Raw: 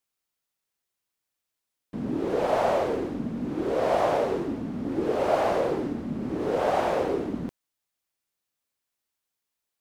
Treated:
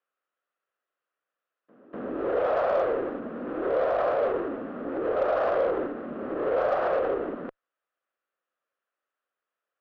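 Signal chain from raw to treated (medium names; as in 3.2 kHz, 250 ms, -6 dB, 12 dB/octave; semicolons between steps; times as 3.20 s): peak limiter -22.5 dBFS, peak gain reduction 11 dB; cabinet simulation 500–2300 Hz, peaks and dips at 530 Hz +5 dB, 890 Hz -9 dB, 1.3 kHz +5 dB, 2.2 kHz -9 dB; pre-echo 246 ms -20.5 dB; Chebyshev shaper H 4 -31 dB, 8 -33 dB, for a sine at -21 dBFS; trim +6.5 dB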